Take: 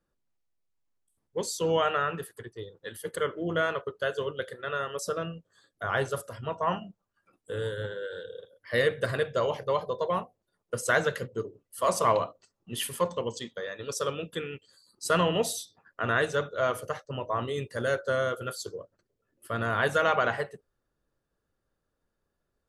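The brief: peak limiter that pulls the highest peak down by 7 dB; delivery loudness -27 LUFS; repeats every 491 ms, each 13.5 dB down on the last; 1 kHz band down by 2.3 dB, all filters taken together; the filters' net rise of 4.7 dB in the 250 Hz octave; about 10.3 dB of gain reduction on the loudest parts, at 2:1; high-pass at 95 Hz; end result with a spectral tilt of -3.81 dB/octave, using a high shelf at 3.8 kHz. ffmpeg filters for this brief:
-af "highpass=95,equalizer=f=250:t=o:g=7.5,equalizer=f=1000:t=o:g=-4,highshelf=f=3800:g=5.5,acompressor=threshold=0.0126:ratio=2,alimiter=level_in=1.41:limit=0.0631:level=0:latency=1,volume=0.708,aecho=1:1:491|982:0.211|0.0444,volume=3.98"

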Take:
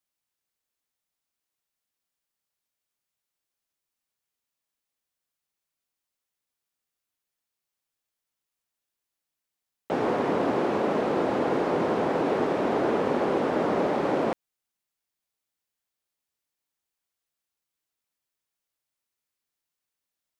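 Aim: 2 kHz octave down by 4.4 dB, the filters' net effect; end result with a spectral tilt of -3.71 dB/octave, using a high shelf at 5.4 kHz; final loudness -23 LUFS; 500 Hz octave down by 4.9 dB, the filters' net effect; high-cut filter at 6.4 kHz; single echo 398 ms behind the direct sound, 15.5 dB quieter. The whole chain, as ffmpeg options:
-af "lowpass=6400,equalizer=f=500:t=o:g=-6,equalizer=f=2000:t=o:g=-4.5,highshelf=f=5400:g=-7.5,aecho=1:1:398:0.168,volume=2"

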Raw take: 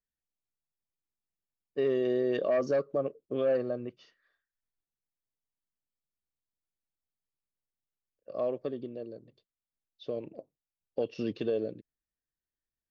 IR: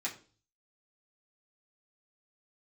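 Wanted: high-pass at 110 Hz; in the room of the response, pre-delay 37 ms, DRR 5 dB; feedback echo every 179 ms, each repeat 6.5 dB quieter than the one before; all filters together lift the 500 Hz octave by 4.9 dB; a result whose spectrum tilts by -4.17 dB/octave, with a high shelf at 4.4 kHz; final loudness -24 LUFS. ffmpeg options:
-filter_complex "[0:a]highpass=110,equalizer=f=500:t=o:g=6,highshelf=f=4400:g=-3.5,aecho=1:1:179|358|537|716|895|1074:0.473|0.222|0.105|0.0491|0.0231|0.0109,asplit=2[s0][s1];[1:a]atrim=start_sample=2205,adelay=37[s2];[s1][s2]afir=irnorm=-1:irlink=0,volume=0.398[s3];[s0][s3]amix=inputs=2:normalize=0,volume=1.26"

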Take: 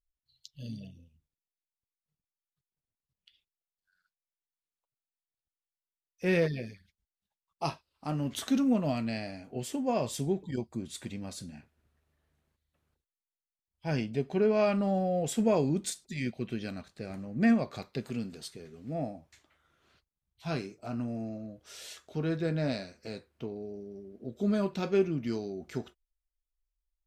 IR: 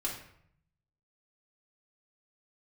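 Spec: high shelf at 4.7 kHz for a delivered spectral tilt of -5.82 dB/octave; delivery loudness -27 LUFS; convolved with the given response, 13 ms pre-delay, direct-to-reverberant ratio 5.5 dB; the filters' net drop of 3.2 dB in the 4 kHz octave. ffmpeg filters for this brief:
-filter_complex "[0:a]equalizer=f=4000:t=o:g=-5.5,highshelf=f=4700:g=3,asplit=2[s0][s1];[1:a]atrim=start_sample=2205,adelay=13[s2];[s1][s2]afir=irnorm=-1:irlink=0,volume=0.376[s3];[s0][s3]amix=inputs=2:normalize=0,volume=1.68"

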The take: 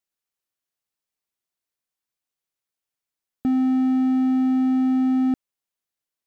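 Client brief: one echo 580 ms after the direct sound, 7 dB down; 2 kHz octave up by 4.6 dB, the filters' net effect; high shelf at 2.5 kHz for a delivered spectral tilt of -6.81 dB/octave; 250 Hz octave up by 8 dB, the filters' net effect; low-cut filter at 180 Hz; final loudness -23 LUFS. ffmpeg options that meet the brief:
-af "highpass=180,equalizer=f=250:t=o:g=9,equalizer=f=2000:t=o:g=3.5,highshelf=f=2500:g=3.5,aecho=1:1:580:0.447,volume=0.299"

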